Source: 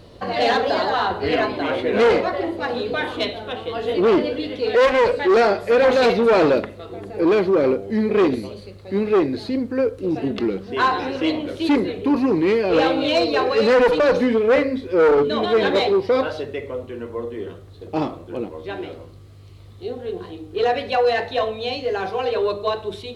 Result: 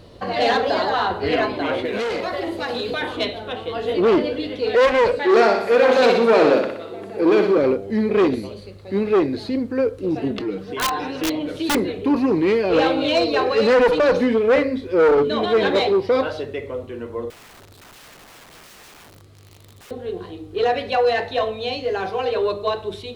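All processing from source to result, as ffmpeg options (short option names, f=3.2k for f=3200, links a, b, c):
-filter_complex "[0:a]asettb=1/sr,asplit=3[a][b][c];[a]atrim=end=1.854[d];[b]atrim=start=1.85:end=3.02,asetpts=PTS-STARTPTS,afade=t=in:d=0.004:c=qsin,afade=t=out:st=1.166:d=0.004:c=qsin,highshelf=f=2.8k:g=10.5,acompressor=threshold=-21dB:ratio=5:attack=3.2:release=140:knee=1:detection=peak[e];[c]atrim=start=3.016[f];[d][e]acrossfade=d=0.004:c1=hsin:c2=qsin[g];[g][f]acrossfade=d=0.004:c1=qsin:c2=hsin,asettb=1/sr,asplit=3[h][i][j];[h]atrim=end=5.194[k];[i]atrim=start=5.19:end=7.58,asetpts=PTS-STARTPTS,afade=t=in:d=0.004:c=qsin,afade=t=out:st=2.386:d=0.004:c=qsin,highpass=190,aecho=1:1:61|122|183|244|305|366|427:0.501|0.271|0.146|0.0789|0.0426|0.023|0.0124,atrim=end_sample=105399[l];[j]atrim=start=7.576[m];[k][l]acrossfade=d=0.004:c1=hsin:c2=qsin[n];[n][m]acrossfade=d=0.004:c1=qsin:c2=hsin,asettb=1/sr,asplit=3[o][p][q];[o]atrim=end=10.394[r];[p]atrim=start=10.39:end=11.75,asetpts=PTS-STARTPTS,afade=t=in:d=0.004:c=qsin,afade=t=out:st=1.356:d=0.004:c=qsin,acompressor=threshold=-27dB:ratio=2:attack=3.2:release=140:knee=1:detection=peak,aecho=1:1:6.6:0.76,atrim=end_sample=59976,aeval=exprs='(mod(5.62*val(0)+1,2)-1)/5.62':c=same[s];[q]atrim=start=11.746[t];[r][s]acrossfade=d=0.004:c1=hsin:c2=qsin[u];[u][t]acrossfade=d=0.004:c1=qsin:c2=hsin,asettb=1/sr,asplit=3[v][w][x];[v]atrim=end=17.304[y];[w]atrim=start=17.3:end=19.91,asetpts=PTS-STARTPTS,afade=t=in:d=0.004:c=qsin,afade=t=out:st=2.606:d=0.004:c=qsin,highpass=f=120:p=1,acompressor=threshold=-35dB:ratio=5:attack=3.2:release=140:knee=1:detection=peak,aeval=exprs='(mod(106*val(0)+1,2)-1)/106':c=same[z];[x]atrim=start=19.906[aa];[y][z]acrossfade=d=0.004:c1=hsin:c2=qsin[ab];[ab][aa]acrossfade=d=0.004:c1=qsin:c2=hsin"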